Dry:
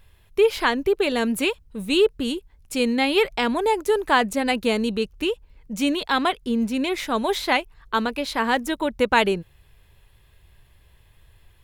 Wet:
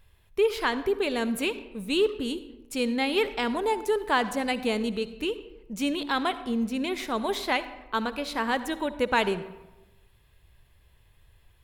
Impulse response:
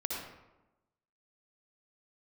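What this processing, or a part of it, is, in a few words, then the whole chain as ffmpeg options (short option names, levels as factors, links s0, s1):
saturated reverb return: -filter_complex "[0:a]asplit=2[s0][s1];[1:a]atrim=start_sample=2205[s2];[s1][s2]afir=irnorm=-1:irlink=0,asoftclip=type=tanh:threshold=0.299,volume=0.251[s3];[s0][s3]amix=inputs=2:normalize=0,volume=0.447"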